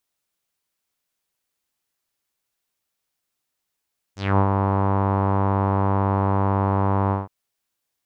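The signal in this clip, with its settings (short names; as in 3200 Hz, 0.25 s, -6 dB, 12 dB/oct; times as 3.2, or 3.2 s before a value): synth note saw G2 12 dB/oct, low-pass 990 Hz, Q 3.6, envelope 3 oct, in 0.18 s, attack 0.221 s, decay 0.08 s, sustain -4 dB, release 0.17 s, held 2.95 s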